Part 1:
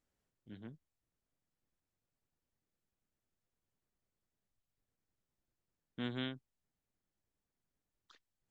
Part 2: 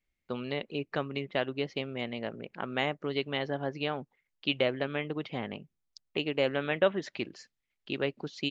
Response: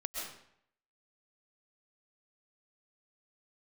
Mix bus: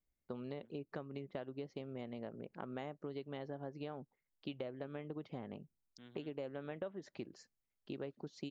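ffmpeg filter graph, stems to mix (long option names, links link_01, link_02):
-filter_complex "[0:a]volume=-18.5dB[link_01];[1:a]equalizer=frequency=2700:width_type=o:width=1.9:gain=-12.5,volume=-3.5dB[link_02];[link_01][link_02]amix=inputs=2:normalize=0,acompressor=threshold=-41dB:ratio=5"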